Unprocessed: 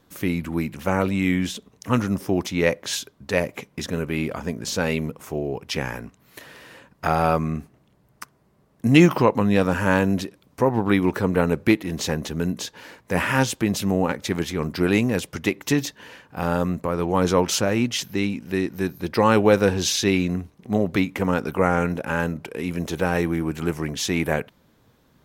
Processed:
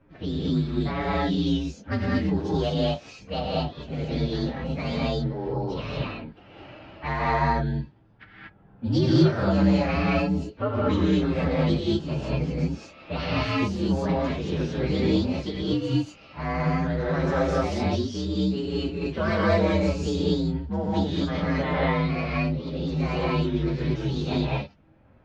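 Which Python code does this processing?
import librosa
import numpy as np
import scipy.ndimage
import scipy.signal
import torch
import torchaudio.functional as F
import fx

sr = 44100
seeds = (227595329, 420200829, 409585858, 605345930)

y = fx.partial_stretch(x, sr, pct=123)
y = scipy.signal.sosfilt(scipy.signal.butter(4, 5400.0, 'lowpass', fs=sr, output='sos'), y)
y = fx.low_shelf(y, sr, hz=130.0, db=3.5)
y = fx.env_lowpass(y, sr, base_hz=1800.0, full_db=-19.0)
y = fx.rev_gated(y, sr, seeds[0], gate_ms=260, shape='rising', drr_db=-6.0)
y = fx.band_squash(y, sr, depth_pct=40)
y = F.gain(torch.from_numpy(y), -8.5).numpy()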